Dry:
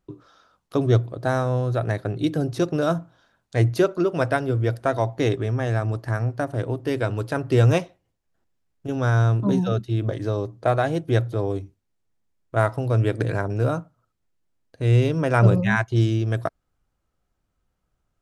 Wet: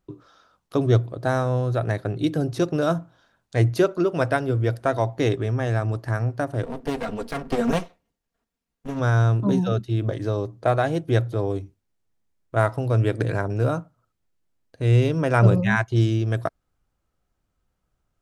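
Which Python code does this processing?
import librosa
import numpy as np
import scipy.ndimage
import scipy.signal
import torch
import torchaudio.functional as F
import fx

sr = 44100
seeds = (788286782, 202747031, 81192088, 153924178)

y = fx.lower_of_two(x, sr, delay_ms=4.3, at=(6.63, 8.99), fade=0.02)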